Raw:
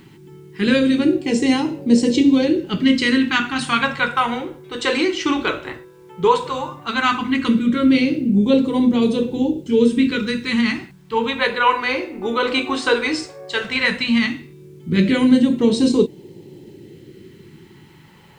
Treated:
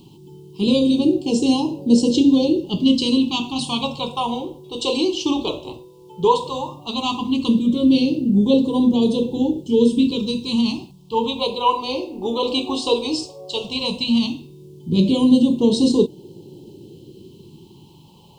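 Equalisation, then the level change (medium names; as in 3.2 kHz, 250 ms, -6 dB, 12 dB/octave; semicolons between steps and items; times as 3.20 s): Chebyshev band-stop 990–2900 Hz, order 3; peaking EQ 4.5 kHz +3 dB 0.7 oct; 0.0 dB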